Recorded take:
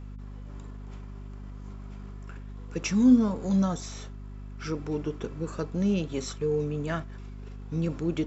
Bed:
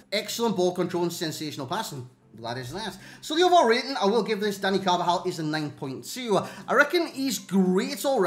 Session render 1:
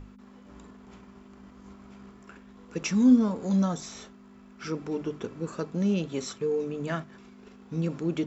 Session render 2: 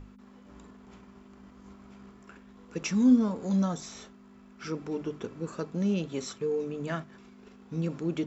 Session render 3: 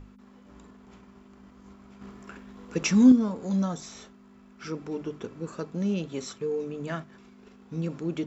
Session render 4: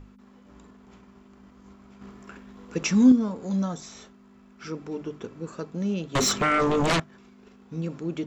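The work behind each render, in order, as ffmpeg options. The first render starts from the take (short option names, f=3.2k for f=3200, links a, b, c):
-af "bandreject=f=50:t=h:w=6,bandreject=f=100:t=h:w=6,bandreject=f=150:t=h:w=6"
-af "volume=-2dB"
-filter_complex "[0:a]asettb=1/sr,asplit=3[a][b][c];[a]atrim=end=2.014[d];[b]atrim=start=2.01:end=3.12,asetpts=PTS-STARTPTS,afade=t=in:d=0.004:c=qsin,afade=t=out:st=1.106:d=0.004:c=qsin,acontrast=57[e];[c]atrim=start=3.116[f];[d][e]acrossfade=d=0.004:c1=hsin:c2=qsin[g];[g][f]acrossfade=d=0.004:c1=qsin:c2=hsin"
-filter_complex "[0:a]asettb=1/sr,asplit=3[a][b][c];[a]atrim=end=6.154[d];[b]atrim=start=6.15:end=7,asetpts=PTS-STARTPTS,afade=t=in:d=0.004:c=qsin,afade=t=out:st=0.846:d=0.004:c=qsin,aeval=exprs='0.119*sin(PI/2*5.62*val(0)/0.119)':c=same[e];[c]atrim=start=6.996[f];[d][e]acrossfade=d=0.004:c1=hsin:c2=qsin[g];[g][f]acrossfade=d=0.004:c1=qsin:c2=hsin"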